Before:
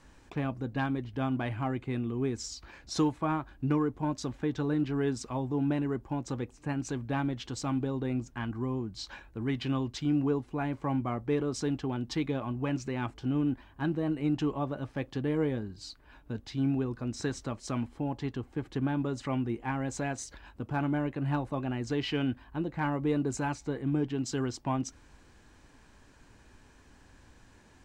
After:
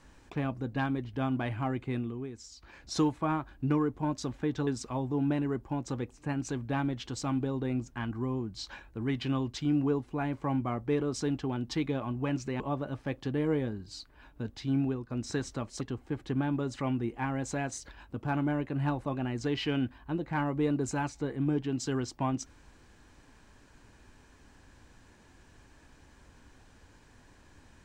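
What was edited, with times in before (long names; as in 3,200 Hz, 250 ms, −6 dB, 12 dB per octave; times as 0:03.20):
0:01.96–0:02.83: duck −10 dB, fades 0.31 s
0:04.67–0:05.07: remove
0:13.00–0:14.50: remove
0:16.69–0:17.00: fade out equal-power, to −11 dB
0:17.71–0:18.27: remove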